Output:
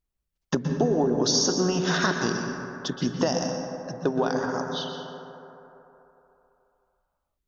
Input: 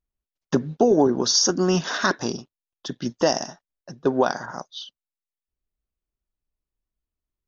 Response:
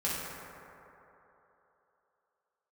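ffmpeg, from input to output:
-filter_complex "[0:a]acompressor=threshold=-24dB:ratio=4,asplit=2[a][b];[1:a]atrim=start_sample=2205,lowshelf=f=130:g=7,adelay=121[c];[b][c]afir=irnorm=-1:irlink=0,volume=-11.5dB[d];[a][d]amix=inputs=2:normalize=0,volume=2dB"

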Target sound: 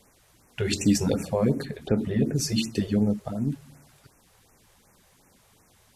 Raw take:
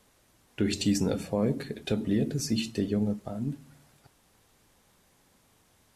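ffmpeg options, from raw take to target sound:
-filter_complex "[0:a]asettb=1/sr,asplit=3[a][b][c];[a]atrim=end=1.654[d];[b]atrim=start=1.65:end=2.36,asetpts=PTS-STARTPTS,afade=t=in:d=0.004:c=qsin,afade=t=out:st=0.706:d=0.004:c=qsin,acrossover=split=2500[e][f];[f]acompressor=threshold=-58dB:ratio=4:attack=1:release=60[g];[e][g]amix=inputs=2:normalize=0[h];[c]atrim=start=2.356[i];[d][h]acrossfade=d=0.004:c1=hsin:c2=qsin[j];[j][i]acrossfade=d=0.004:c1=qsin:c2=hsin,afftfilt=real='re*(1-between(b*sr/1024,220*pow(4000/220,0.5+0.5*sin(2*PI*2.7*pts/sr))/1.41,220*pow(4000/220,0.5+0.5*sin(2*PI*2.7*pts/sr))*1.41))':imag='im*(1-between(b*sr/1024,220*pow(4000/220,0.5+0.5*sin(2*PI*2.7*pts/sr))/1.41,220*pow(4000/220,0.5+0.5*sin(2*PI*2.7*pts/sr))*1.41))':win_size=1024:overlap=0.75,volume=5dB"

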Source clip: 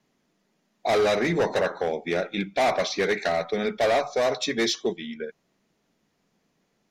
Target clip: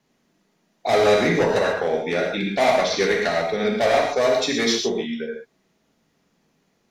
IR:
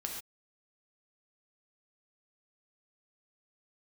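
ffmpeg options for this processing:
-filter_complex "[1:a]atrim=start_sample=2205[a];[0:a][a]afir=irnorm=-1:irlink=0,volume=4dB"

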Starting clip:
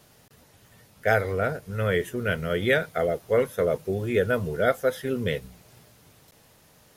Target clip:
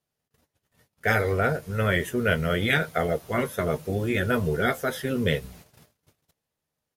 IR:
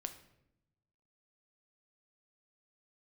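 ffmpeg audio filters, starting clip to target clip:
-filter_complex "[0:a]asplit=2[a][b];[b]adelay=13,volume=-10dB[c];[a][c]amix=inputs=2:normalize=0,agate=range=-31dB:threshold=-51dB:ratio=16:detection=peak,afftfilt=real='re*lt(hypot(re,im),0.447)':imag='im*lt(hypot(re,im),0.447)':win_size=1024:overlap=0.75,volume=3.5dB"

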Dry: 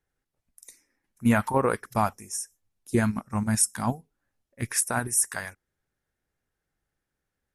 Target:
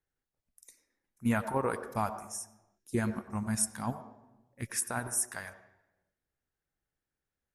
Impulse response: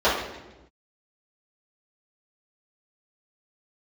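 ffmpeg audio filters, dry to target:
-filter_complex "[0:a]asplit=2[a][b];[1:a]atrim=start_sample=2205,adelay=88[c];[b][c]afir=irnorm=-1:irlink=0,volume=-31.5dB[d];[a][d]amix=inputs=2:normalize=0,volume=-7.5dB"

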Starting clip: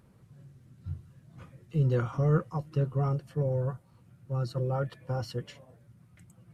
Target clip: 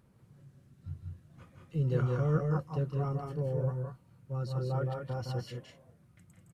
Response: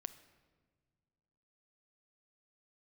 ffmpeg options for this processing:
-af "aecho=1:1:163.3|195.3:0.501|0.562,volume=-4.5dB"

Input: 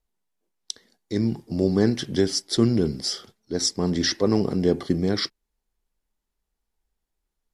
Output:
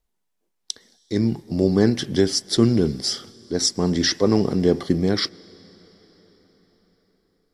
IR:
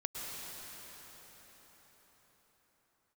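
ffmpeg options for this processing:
-filter_complex "[0:a]asplit=2[a][b];[b]lowshelf=f=440:g=-7[c];[1:a]atrim=start_sample=2205[d];[c][d]afir=irnorm=-1:irlink=0,volume=-22dB[e];[a][e]amix=inputs=2:normalize=0,volume=2.5dB"

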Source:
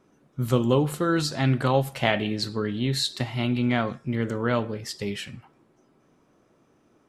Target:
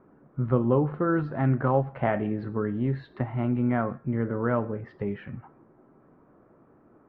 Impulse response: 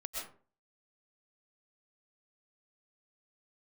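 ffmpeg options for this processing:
-filter_complex "[0:a]lowpass=f=1.6k:w=0.5412,lowpass=f=1.6k:w=1.3066,asplit=2[a][b];[b]acompressor=threshold=-39dB:ratio=6,volume=2.5dB[c];[a][c]amix=inputs=2:normalize=0,volume=-2.5dB"

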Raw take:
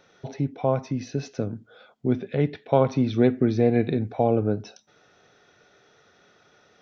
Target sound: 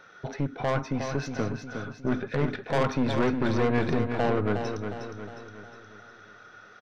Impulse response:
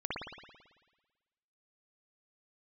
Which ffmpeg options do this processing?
-af "equalizer=f=1.4k:w=1.8:g=13,aeval=exprs='(tanh(12.6*val(0)+0.45)-tanh(0.45))/12.6':c=same,aecho=1:1:360|720|1080|1440|1800|2160:0.447|0.219|0.107|0.0526|0.0258|0.0126,volume=1.5dB"

